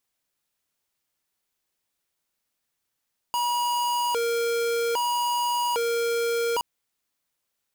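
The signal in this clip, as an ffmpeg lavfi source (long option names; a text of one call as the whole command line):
ffmpeg -f lavfi -i "aevalsrc='0.0562*(2*lt(mod((715*t+248/0.62*(0.5-abs(mod(0.62*t,1)-0.5))),1),0.5)-1)':duration=3.27:sample_rate=44100" out.wav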